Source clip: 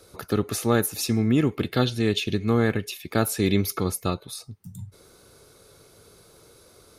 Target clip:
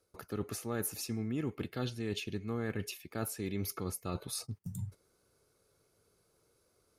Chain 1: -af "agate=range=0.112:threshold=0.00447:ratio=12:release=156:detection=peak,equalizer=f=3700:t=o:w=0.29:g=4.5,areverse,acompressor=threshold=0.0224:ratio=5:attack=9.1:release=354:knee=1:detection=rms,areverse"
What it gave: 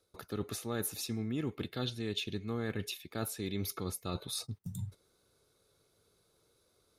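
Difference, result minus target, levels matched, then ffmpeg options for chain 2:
4 kHz band +4.5 dB
-af "agate=range=0.112:threshold=0.00447:ratio=12:release=156:detection=peak,equalizer=f=3700:t=o:w=0.29:g=-6.5,areverse,acompressor=threshold=0.0224:ratio=5:attack=9.1:release=354:knee=1:detection=rms,areverse"

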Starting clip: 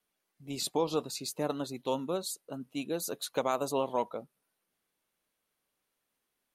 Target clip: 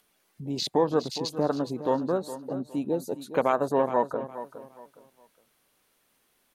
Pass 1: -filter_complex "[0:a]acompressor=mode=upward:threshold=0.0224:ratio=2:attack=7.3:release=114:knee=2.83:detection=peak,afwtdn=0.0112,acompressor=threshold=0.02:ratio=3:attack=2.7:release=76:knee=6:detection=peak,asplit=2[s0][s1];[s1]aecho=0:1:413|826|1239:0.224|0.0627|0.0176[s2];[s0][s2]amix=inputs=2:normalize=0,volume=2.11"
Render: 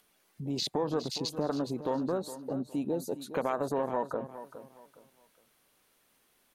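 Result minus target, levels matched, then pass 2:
compression: peak gain reduction +9 dB
-filter_complex "[0:a]acompressor=mode=upward:threshold=0.0224:ratio=2:attack=7.3:release=114:knee=2.83:detection=peak,afwtdn=0.0112,asplit=2[s0][s1];[s1]aecho=0:1:413|826|1239:0.224|0.0627|0.0176[s2];[s0][s2]amix=inputs=2:normalize=0,volume=2.11"

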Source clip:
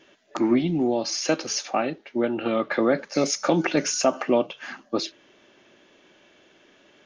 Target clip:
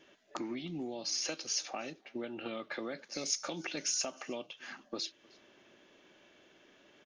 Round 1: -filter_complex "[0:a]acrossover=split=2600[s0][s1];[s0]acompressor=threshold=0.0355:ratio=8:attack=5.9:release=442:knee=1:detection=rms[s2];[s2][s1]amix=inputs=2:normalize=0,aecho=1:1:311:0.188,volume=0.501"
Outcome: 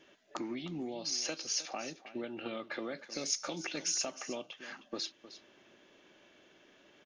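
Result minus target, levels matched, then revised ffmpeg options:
echo-to-direct +12 dB
-filter_complex "[0:a]acrossover=split=2600[s0][s1];[s0]acompressor=threshold=0.0355:ratio=8:attack=5.9:release=442:knee=1:detection=rms[s2];[s2][s1]amix=inputs=2:normalize=0,aecho=1:1:311:0.0473,volume=0.501"

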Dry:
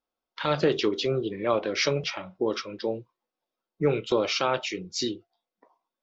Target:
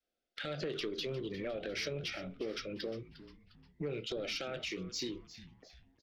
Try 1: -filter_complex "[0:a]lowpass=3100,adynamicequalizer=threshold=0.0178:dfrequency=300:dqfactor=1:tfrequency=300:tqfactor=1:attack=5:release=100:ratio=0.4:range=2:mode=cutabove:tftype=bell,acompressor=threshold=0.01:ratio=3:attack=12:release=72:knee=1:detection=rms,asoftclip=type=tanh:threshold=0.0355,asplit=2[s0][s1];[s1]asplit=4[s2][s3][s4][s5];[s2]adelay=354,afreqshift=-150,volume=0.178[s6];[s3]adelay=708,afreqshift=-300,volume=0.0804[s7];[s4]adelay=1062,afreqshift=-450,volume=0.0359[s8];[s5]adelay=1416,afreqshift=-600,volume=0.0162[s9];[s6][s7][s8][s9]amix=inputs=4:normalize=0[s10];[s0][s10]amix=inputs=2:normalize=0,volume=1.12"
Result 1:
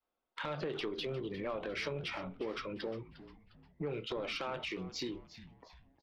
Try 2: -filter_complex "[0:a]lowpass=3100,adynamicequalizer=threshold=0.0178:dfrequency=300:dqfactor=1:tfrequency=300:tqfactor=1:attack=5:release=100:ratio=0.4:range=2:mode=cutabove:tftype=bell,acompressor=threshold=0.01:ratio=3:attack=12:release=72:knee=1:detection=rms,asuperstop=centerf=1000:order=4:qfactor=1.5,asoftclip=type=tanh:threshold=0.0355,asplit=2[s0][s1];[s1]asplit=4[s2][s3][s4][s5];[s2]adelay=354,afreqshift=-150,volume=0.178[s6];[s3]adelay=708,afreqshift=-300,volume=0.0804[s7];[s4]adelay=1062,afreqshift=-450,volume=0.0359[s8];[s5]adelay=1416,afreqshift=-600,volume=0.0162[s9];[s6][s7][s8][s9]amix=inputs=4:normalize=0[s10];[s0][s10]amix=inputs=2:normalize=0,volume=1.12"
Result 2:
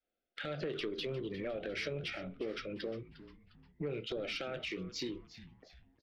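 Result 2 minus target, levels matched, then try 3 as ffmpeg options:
8 kHz band -6.0 dB
-filter_complex "[0:a]lowpass=6800,adynamicequalizer=threshold=0.0178:dfrequency=300:dqfactor=1:tfrequency=300:tqfactor=1:attack=5:release=100:ratio=0.4:range=2:mode=cutabove:tftype=bell,acompressor=threshold=0.01:ratio=3:attack=12:release=72:knee=1:detection=rms,asuperstop=centerf=1000:order=4:qfactor=1.5,asoftclip=type=tanh:threshold=0.0355,asplit=2[s0][s1];[s1]asplit=4[s2][s3][s4][s5];[s2]adelay=354,afreqshift=-150,volume=0.178[s6];[s3]adelay=708,afreqshift=-300,volume=0.0804[s7];[s4]adelay=1062,afreqshift=-450,volume=0.0359[s8];[s5]adelay=1416,afreqshift=-600,volume=0.0162[s9];[s6][s7][s8][s9]amix=inputs=4:normalize=0[s10];[s0][s10]amix=inputs=2:normalize=0,volume=1.12"

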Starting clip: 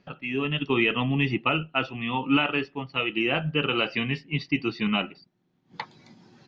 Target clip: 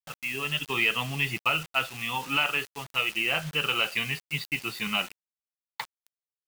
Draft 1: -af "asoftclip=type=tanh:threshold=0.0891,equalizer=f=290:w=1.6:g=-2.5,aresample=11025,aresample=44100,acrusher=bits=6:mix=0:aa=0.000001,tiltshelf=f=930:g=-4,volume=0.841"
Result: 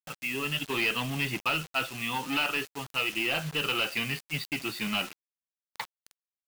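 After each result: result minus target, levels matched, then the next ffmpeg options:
saturation: distortion +15 dB; 250 Hz band +5.0 dB
-af "asoftclip=type=tanh:threshold=0.316,equalizer=f=290:w=1.6:g=-2.5,aresample=11025,aresample=44100,acrusher=bits=6:mix=0:aa=0.000001,tiltshelf=f=930:g=-4,volume=0.841"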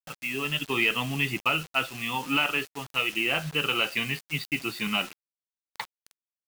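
250 Hz band +5.0 dB
-af "asoftclip=type=tanh:threshold=0.316,equalizer=f=290:w=1.6:g=-10,aresample=11025,aresample=44100,acrusher=bits=6:mix=0:aa=0.000001,tiltshelf=f=930:g=-4,volume=0.841"

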